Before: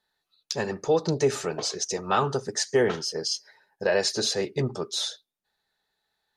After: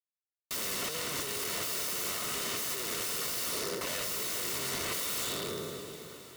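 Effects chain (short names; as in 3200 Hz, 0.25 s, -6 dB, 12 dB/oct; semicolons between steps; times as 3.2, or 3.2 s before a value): spectral trails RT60 1.59 s; recorder AGC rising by 6.1 dB/s; low-pass opened by the level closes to 900 Hz, open at -17.5 dBFS; HPF 130 Hz 6 dB/oct; low shelf 270 Hz +4 dB; in parallel at +0.5 dB: limiter -15.5 dBFS, peak gain reduction 7 dB; on the sum: compressor 2:1, threshold -42 dBFS, peak gain reduction 16.5 dB; hard clip -31 dBFS, distortion -11 dB; requantised 10-bit, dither none; wrapped overs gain 36.5 dB; notch comb 820 Hz; diffused feedback echo 0.474 s, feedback 55%, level -13 dB; gain +8.5 dB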